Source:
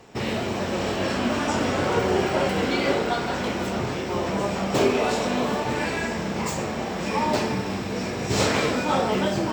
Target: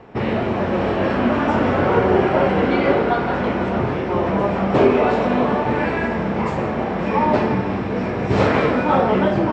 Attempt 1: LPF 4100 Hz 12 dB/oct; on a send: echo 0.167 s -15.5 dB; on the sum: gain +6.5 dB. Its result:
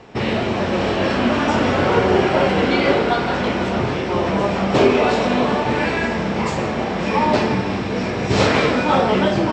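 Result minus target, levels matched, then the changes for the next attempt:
4000 Hz band +8.5 dB
change: LPF 1900 Hz 12 dB/oct

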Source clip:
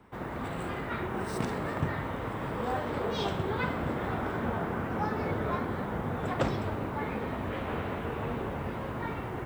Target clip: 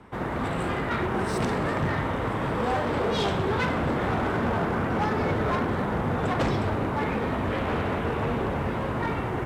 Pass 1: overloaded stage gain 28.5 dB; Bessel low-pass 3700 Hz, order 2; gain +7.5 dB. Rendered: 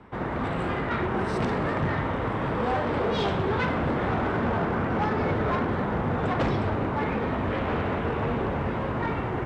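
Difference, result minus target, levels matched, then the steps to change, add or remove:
8000 Hz band -8.5 dB
change: Bessel low-pass 10000 Hz, order 2

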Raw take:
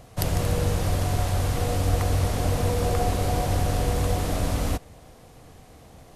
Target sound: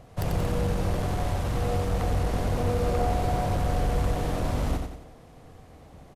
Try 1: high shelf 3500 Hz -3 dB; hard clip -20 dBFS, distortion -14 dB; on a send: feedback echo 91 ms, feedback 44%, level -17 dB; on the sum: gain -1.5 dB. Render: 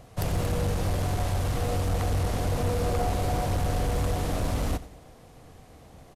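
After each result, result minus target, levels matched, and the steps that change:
echo-to-direct -11.5 dB; 8000 Hz band +4.5 dB
change: feedback echo 91 ms, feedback 44%, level -5.5 dB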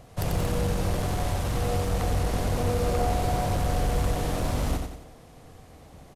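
8000 Hz band +5.0 dB
change: high shelf 3500 Hz -9.5 dB

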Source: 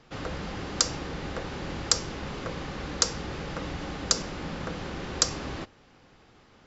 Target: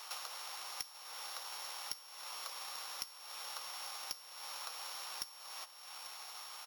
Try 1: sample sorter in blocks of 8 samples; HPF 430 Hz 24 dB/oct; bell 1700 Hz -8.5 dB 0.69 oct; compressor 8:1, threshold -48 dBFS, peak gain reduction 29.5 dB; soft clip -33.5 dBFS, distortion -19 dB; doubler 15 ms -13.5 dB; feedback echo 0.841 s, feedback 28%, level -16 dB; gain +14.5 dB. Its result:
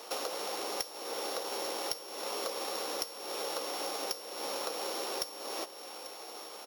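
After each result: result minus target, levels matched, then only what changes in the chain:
500 Hz band +15.5 dB; compressor: peak gain reduction -8 dB
change: HPF 920 Hz 24 dB/oct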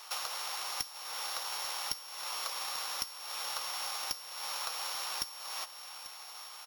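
compressor: peak gain reduction -8 dB
change: compressor 8:1, threshold -57 dBFS, peak gain reduction 37 dB

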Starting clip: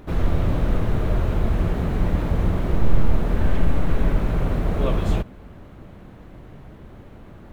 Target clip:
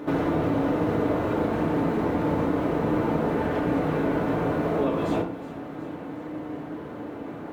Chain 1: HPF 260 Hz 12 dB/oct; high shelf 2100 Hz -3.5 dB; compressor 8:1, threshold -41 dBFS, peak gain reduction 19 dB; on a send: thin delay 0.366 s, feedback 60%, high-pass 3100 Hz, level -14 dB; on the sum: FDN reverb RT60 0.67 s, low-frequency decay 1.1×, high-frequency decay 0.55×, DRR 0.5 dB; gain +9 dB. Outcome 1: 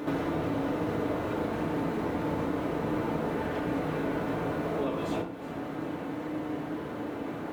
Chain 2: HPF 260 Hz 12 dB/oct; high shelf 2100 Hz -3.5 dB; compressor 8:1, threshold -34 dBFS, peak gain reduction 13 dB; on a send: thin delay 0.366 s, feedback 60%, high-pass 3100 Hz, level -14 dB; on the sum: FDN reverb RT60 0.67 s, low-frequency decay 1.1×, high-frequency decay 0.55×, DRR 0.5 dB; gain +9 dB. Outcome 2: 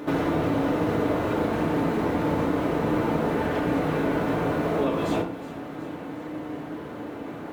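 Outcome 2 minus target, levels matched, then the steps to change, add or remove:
4000 Hz band +4.5 dB
change: high shelf 2100 Hz -10 dB

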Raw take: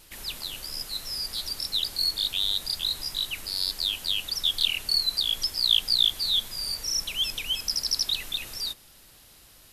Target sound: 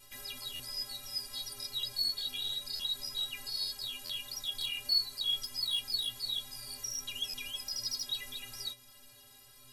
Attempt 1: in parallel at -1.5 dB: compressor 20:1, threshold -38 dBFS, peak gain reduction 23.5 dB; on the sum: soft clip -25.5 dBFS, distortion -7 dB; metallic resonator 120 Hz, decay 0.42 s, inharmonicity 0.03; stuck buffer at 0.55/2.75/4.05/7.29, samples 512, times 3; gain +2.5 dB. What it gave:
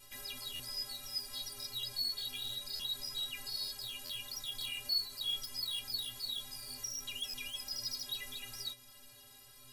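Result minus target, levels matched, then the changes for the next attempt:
soft clip: distortion +8 dB
change: soft clip -16.5 dBFS, distortion -15 dB

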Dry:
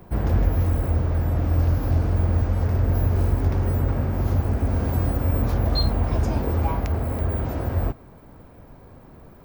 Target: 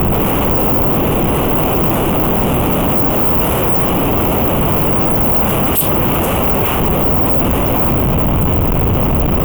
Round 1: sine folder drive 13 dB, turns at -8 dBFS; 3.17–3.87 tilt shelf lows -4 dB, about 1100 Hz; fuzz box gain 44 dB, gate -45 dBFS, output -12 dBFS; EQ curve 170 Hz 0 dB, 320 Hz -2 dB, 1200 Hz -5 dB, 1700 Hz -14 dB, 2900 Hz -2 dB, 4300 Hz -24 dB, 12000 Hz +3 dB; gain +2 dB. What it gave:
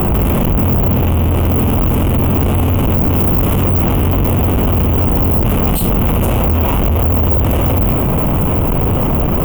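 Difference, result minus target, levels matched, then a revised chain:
sine folder: distortion -37 dB
sine folder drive 21 dB, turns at -8 dBFS; 3.17–3.87 tilt shelf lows -4 dB, about 1100 Hz; fuzz box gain 44 dB, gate -45 dBFS, output -12 dBFS; EQ curve 170 Hz 0 dB, 320 Hz -2 dB, 1200 Hz -5 dB, 1700 Hz -14 dB, 2900 Hz -2 dB, 4300 Hz -24 dB, 12000 Hz +3 dB; gain +2 dB

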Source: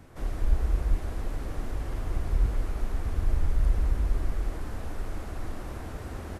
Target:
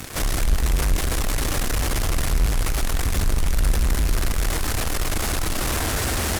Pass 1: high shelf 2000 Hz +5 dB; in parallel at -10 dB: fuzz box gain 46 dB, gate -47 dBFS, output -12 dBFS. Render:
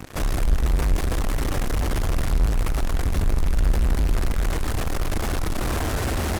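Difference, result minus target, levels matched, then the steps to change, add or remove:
4000 Hz band -5.0 dB
change: high shelf 2000 Hz +17 dB

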